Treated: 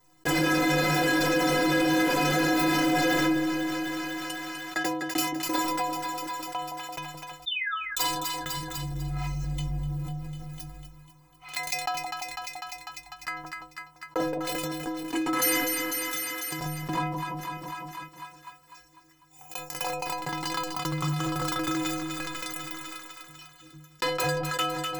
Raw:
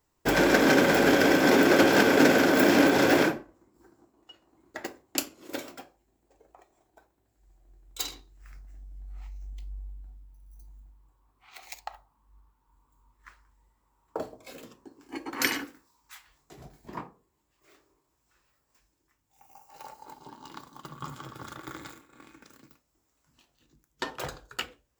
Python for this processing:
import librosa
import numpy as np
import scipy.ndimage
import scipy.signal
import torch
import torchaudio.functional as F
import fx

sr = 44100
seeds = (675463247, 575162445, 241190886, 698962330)

y = fx.peak_eq(x, sr, hz=1000.0, db=13.0, octaves=0.44, at=(5.23, 8.08))
y = fx.leveller(y, sr, passes=5)
y = fx.spec_paint(y, sr, seeds[0], shape='fall', start_s=7.46, length_s=0.31, low_hz=1100.0, high_hz=3800.0, level_db=-30.0)
y = fx.stiff_resonator(y, sr, f0_hz=150.0, decay_s=0.54, stiffness=0.03)
y = fx.echo_split(y, sr, split_hz=900.0, low_ms=170, high_ms=249, feedback_pct=52, wet_db=-16.0)
y = fx.env_flatten(y, sr, amount_pct=70)
y = F.gain(torch.from_numpy(y), -3.5).numpy()